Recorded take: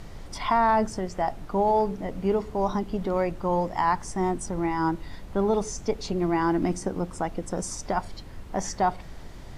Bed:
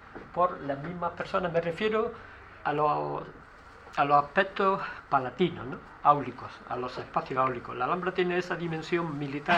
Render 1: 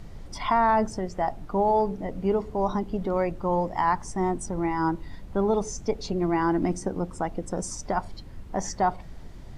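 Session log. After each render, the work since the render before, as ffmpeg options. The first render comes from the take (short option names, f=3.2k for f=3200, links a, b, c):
-af "afftdn=nr=6:nf=-42"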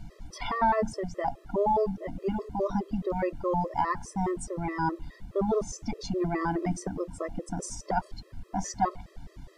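-af "afftfilt=real='re*gt(sin(2*PI*4.8*pts/sr)*(1-2*mod(floor(b*sr/1024/340),2)),0)':imag='im*gt(sin(2*PI*4.8*pts/sr)*(1-2*mod(floor(b*sr/1024/340),2)),0)':win_size=1024:overlap=0.75"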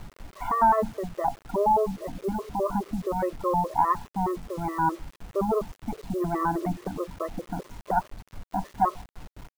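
-af "lowpass=f=1.2k:t=q:w=2.1,acrusher=bits=7:mix=0:aa=0.000001"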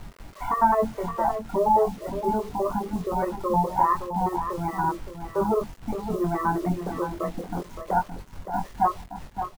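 -filter_complex "[0:a]asplit=2[a][b];[b]adelay=23,volume=-4.5dB[c];[a][c]amix=inputs=2:normalize=0,aecho=1:1:568:0.355"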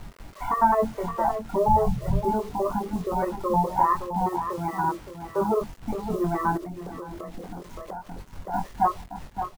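-filter_complex "[0:a]asettb=1/sr,asplit=3[a][b][c];[a]atrim=end=1.684[d];[b]atrim=start=1.68:end=2.25,asetpts=PTS-STARTPTS,afade=t=in:d=0.004:c=qsin,afade=t=out:st=0.566:d=0.004:c=qsin,lowshelf=f=190:t=q:w=3:g=14[e];[c]atrim=start=2.246[f];[d][e]acrossfade=d=0.004:c1=hsin:c2=qsin[g];[g][f]acrossfade=d=0.004:c1=qsin:c2=hsin,asettb=1/sr,asplit=3[h][i][j];[h]atrim=end=4.254[k];[i]atrim=start=4.25:end=5.62,asetpts=PTS-STARTPTS,afade=t=in:d=0.004:c=qsin,afade=t=out:st=1.366:d=0.004:c=qsin,highpass=f=97:p=1[l];[j]atrim=start=5.616[m];[k][l]acrossfade=d=0.004:c1=hsin:c2=qsin[n];[n][m]acrossfade=d=0.004:c1=qsin:c2=hsin,asettb=1/sr,asplit=3[o][p][q];[o]atrim=end=6.574[r];[p]atrim=start=6.57:end=8.28,asetpts=PTS-STARTPTS,afade=t=in:d=0.004:c=qsin,afade=t=out:st=1.706:d=0.004:c=qsin,acompressor=threshold=-32dB:ratio=12:attack=3.2:release=140:knee=1:detection=peak[s];[q]atrim=start=8.276[t];[r][s]acrossfade=d=0.004:c1=hsin:c2=qsin[u];[u][t]acrossfade=d=0.004:c1=qsin:c2=hsin"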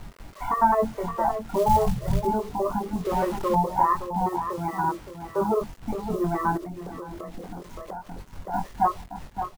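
-filter_complex "[0:a]asettb=1/sr,asplit=3[a][b][c];[a]atrim=end=1.414[d];[b]atrim=start=1.41:end=2.27,asetpts=PTS-STARTPTS,afade=t=in:d=0.004:c=qsin,afade=t=out:st=0.856:d=0.004:c=qsin,acrusher=bits=5:mode=log:mix=0:aa=0.000001[e];[c]atrim=start=2.266[f];[d][e]acrossfade=d=0.004:c1=hsin:c2=qsin[g];[g][f]acrossfade=d=0.004:c1=qsin:c2=hsin,asettb=1/sr,asplit=3[h][i][j];[h]atrim=end=3.054[k];[i]atrim=start=3.05:end=3.55,asetpts=PTS-STARTPTS,afade=t=in:d=0.004:c=qsin,afade=t=out:st=0.496:d=0.004:c=qsin,aeval=exprs='val(0)+0.5*0.0237*sgn(val(0))':c=same[l];[j]atrim=start=3.546[m];[k][l]acrossfade=d=0.004:c1=hsin:c2=qsin[n];[n][m]acrossfade=d=0.004:c1=qsin:c2=hsin"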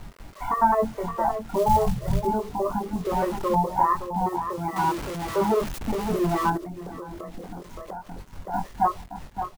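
-filter_complex "[0:a]asettb=1/sr,asplit=3[a][b][c];[a]atrim=end=4.764[d];[b]atrim=start=4.76:end=6.5,asetpts=PTS-STARTPTS,afade=t=in:d=0.004:c=qsin,afade=t=out:st=1.736:d=0.004:c=qsin,aeval=exprs='val(0)+0.5*0.0355*sgn(val(0))':c=same[e];[c]atrim=start=6.496[f];[d][e]acrossfade=d=0.004:c1=hsin:c2=qsin[g];[g][f]acrossfade=d=0.004:c1=qsin:c2=hsin"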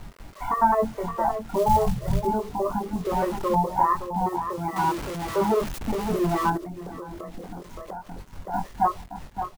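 -af anull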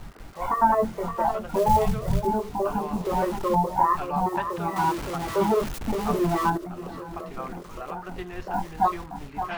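-filter_complex "[1:a]volume=-10dB[a];[0:a][a]amix=inputs=2:normalize=0"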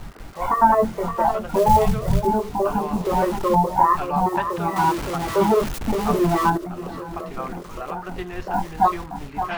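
-af "volume=4.5dB"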